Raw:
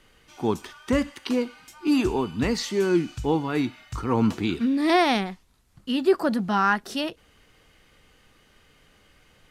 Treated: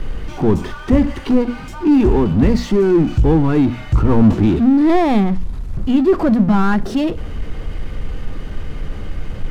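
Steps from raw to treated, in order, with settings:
power curve on the samples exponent 0.5
spectral tilt −4 dB per octave
mains-hum notches 60/120/180/240 Hz
level −2 dB

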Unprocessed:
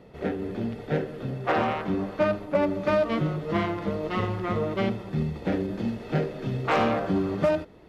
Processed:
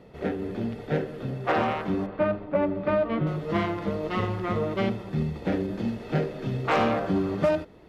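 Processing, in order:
0:02.06–0:03.27: high-frequency loss of the air 340 metres

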